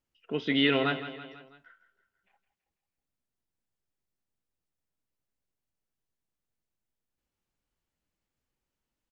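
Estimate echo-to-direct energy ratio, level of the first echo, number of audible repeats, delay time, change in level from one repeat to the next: −11.5 dB, −13.0 dB, 4, 164 ms, −5.0 dB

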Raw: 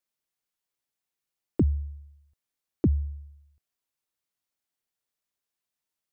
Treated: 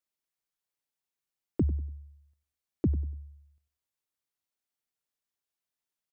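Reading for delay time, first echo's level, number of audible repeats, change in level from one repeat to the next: 96 ms, −16.0 dB, 2, −11.5 dB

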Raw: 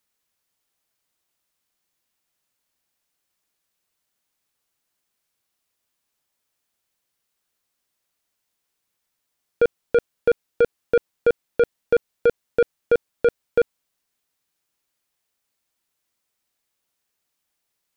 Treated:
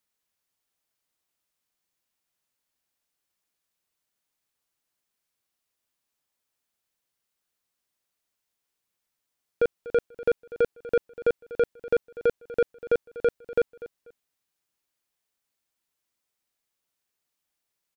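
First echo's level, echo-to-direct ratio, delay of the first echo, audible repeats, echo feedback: −17.0 dB, −17.0 dB, 244 ms, 2, 24%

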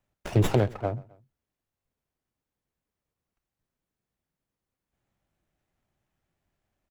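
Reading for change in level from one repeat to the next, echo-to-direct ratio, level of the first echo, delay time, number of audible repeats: −5.0 dB, −22.0 dB, −23.0 dB, 131 ms, 2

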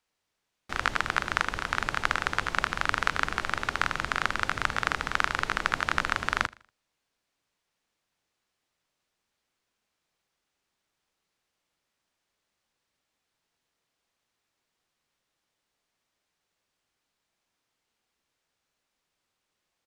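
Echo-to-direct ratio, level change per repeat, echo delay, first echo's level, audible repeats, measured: −21.5 dB, −8.5 dB, 79 ms, −22.0 dB, 2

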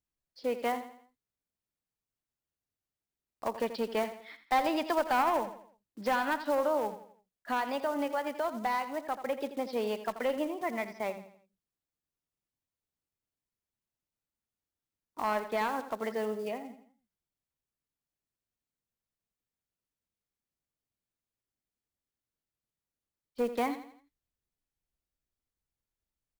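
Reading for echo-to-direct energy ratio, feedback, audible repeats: −11.0 dB, 41%, 3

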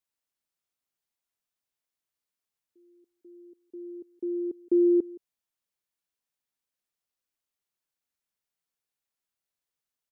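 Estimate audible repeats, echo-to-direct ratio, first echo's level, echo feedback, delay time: 1, −21.5 dB, −21.5 dB, repeats not evenly spaced, 170 ms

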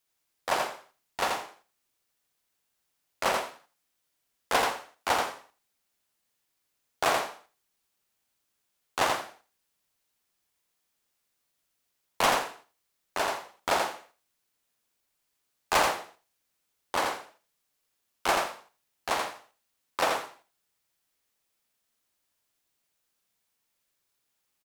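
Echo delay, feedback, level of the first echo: 84 ms, 16%, −4.0 dB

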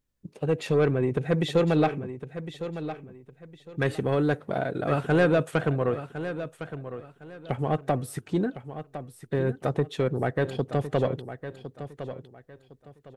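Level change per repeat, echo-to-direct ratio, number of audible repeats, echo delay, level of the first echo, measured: −11.5 dB, −11.0 dB, 3, 1,058 ms, −11.5 dB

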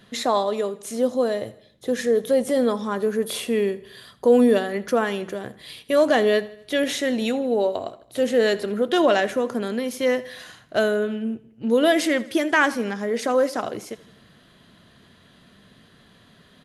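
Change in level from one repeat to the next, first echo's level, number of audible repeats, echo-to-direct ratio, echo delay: −6.0 dB, −19.0 dB, 3, −17.5 dB, 81 ms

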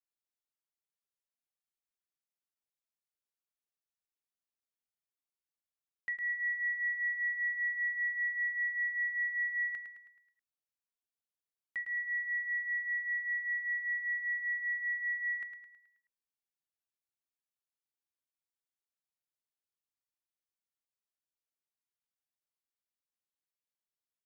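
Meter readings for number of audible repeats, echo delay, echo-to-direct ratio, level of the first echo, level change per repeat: 5, 107 ms, −7.0 dB, −8.0 dB, −6.5 dB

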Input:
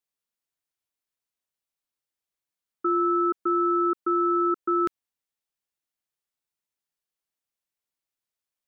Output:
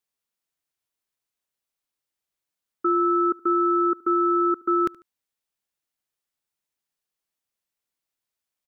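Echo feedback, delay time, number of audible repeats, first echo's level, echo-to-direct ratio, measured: 35%, 73 ms, 2, −23.0 dB, −22.5 dB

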